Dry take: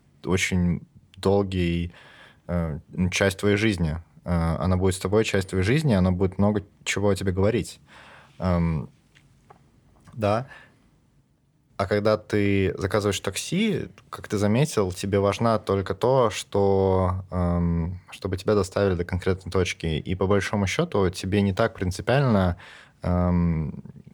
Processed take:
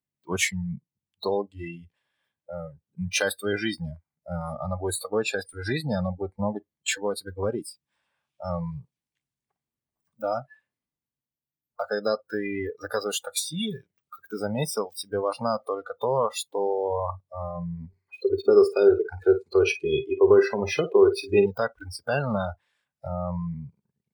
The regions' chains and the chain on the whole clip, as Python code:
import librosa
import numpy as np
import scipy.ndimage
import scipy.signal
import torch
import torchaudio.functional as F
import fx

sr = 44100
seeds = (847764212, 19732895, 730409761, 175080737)

y = fx.chain(x, sr, fx.high_shelf(hz=7900.0, db=-3.5),
    fx.small_body(hz=(390.0, 2500.0), ring_ms=80, db=17),
    fx.room_flutter(wall_m=9.1, rt60_s=0.3), at=(17.88, 21.46))
y = fx.notch(y, sr, hz=1300.0, q=15.0)
y = fx.noise_reduce_blind(y, sr, reduce_db=28)
y = fx.tilt_eq(y, sr, slope=2.0)
y = y * librosa.db_to_amplitude(-2.0)